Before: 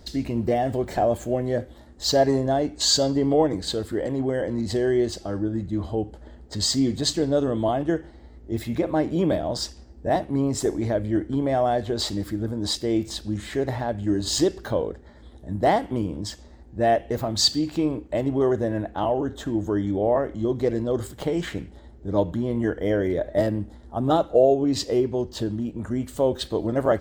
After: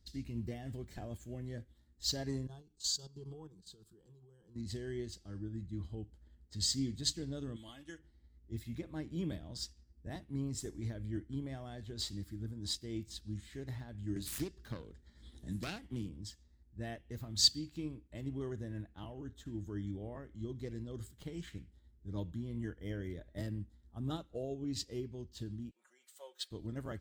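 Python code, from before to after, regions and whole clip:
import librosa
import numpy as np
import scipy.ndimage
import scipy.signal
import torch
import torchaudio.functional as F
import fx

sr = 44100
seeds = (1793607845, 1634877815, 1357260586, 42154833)

y = fx.chain(x, sr, fx.level_steps(step_db=11),
    fx.fixed_phaser(hz=400.0, stages=8), at=(2.47, 4.56))
y = fx.chain(y, sr, fx.tilt_shelf(db=-8.5, hz=1200.0),
    fx.comb(ms=3.6, depth=0.45), at=(7.56, 7.99))
y = fx.chain(y, sr, fx.self_delay(depth_ms=0.23),
    fx.peak_eq(hz=93.0, db=-7.0, octaves=0.28),
    fx.band_squash(depth_pct=70), at=(14.16, 16.09))
y = fx.chain(y, sr, fx.highpass(hz=600.0, slope=24),
    fx.comb(ms=5.5, depth=0.78), at=(25.71, 26.51))
y = fx.tone_stack(y, sr, knobs='6-0-2')
y = fx.upward_expand(y, sr, threshold_db=-59.0, expansion=1.5)
y = F.gain(torch.from_numpy(y), 9.0).numpy()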